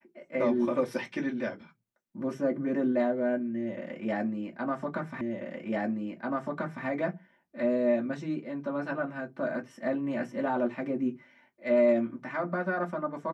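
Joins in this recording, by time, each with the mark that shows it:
5.21 repeat of the last 1.64 s

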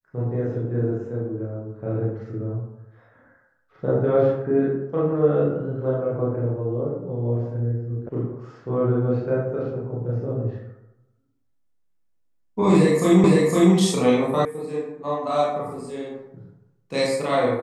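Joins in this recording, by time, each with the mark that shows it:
8.09 sound cut off
13.24 repeat of the last 0.51 s
14.45 sound cut off

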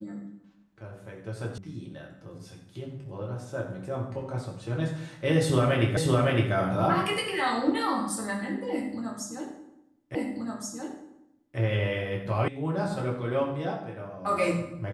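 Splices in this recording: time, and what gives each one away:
1.58 sound cut off
5.97 repeat of the last 0.56 s
10.15 repeat of the last 1.43 s
12.48 sound cut off

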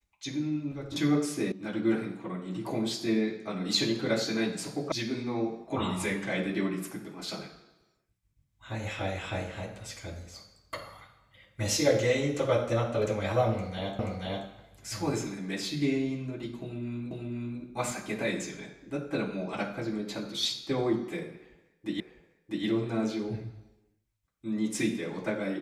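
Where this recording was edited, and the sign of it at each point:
1.52 sound cut off
4.92 sound cut off
13.99 repeat of the last 0.48 s
17.11 repeat of the last 0.49 s
22 repeat of the last 0.65 s

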